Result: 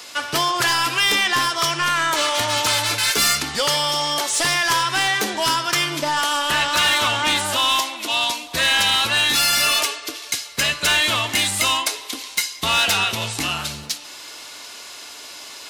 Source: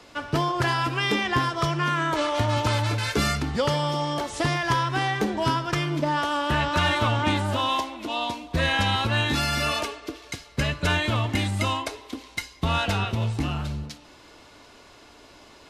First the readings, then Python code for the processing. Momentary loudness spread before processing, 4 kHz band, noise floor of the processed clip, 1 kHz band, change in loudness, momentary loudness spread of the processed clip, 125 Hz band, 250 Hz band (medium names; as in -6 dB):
9 LU, +11.5 dB, -38 dBFS, +4.0 dB, +6.5 dB, 13 LU, -9.0 dB, -4.5 dB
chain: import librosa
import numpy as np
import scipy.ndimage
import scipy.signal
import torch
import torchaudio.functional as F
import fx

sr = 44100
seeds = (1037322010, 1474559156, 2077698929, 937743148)

p1 = fx.tilt_eq(x, sr, slope=4.5)
p2 = fx.rider(p1, sr, range_db=4, speed_s=2.0)
p3 = p1 + (p2 * librosa.db_to_amplitude(-0.5))
y = 10.0 ** (-12.5 / 20.0) * np.tanh(p3 / 10.0 ** (-12.5 / 20.0))